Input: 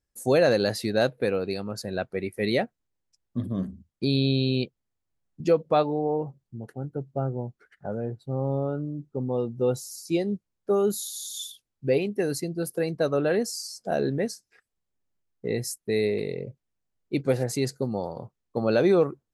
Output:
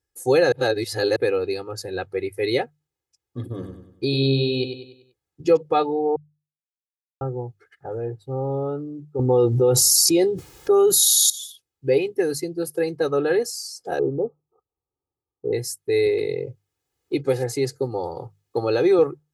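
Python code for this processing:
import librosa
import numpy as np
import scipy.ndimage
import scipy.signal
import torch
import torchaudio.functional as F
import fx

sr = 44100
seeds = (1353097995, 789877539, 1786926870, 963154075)

y = fx.echo_feedback(x, sr, ms=96, feedback_pct=43, wet_db=-7.5, at=(3.44, 5.57))
y = fx.env_flatten(y, sr, amount_pct=100, at=(9.19, 11.3))
y = fx.brickwall_lowpass(y, sr, high_hz=1300.0, at=(13.99, 15.53))
y = fx.band_squash(y, sr, depth_pct=40, at=(16.06, 18.99))
y = fx.edit(y, sr, fx.reverse_span(start_s=0.52, length_s=0.64),
    fx.silence(start_s=6.16, length_s=1.05), tone=tone)
y = scipy.signal.sosfilt(scipy.signal.butter(2, 63.0, 'highpass', fs=sr, output='sos'), y)
y = fx.hum_notches(y, sr, base_hz=50, count=3)
y = y + 0.97 * np.pad(y, (int(2.4 * sr / 1000.0), 0))[:len(y)]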